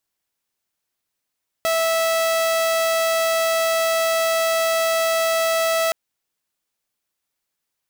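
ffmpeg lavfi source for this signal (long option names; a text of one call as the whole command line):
ffmpeg -f lavfi -i "aevalsrc='0.178*(2*mod(655*t,1)-1)':duration=4.27:sample_rate=44100" out.wav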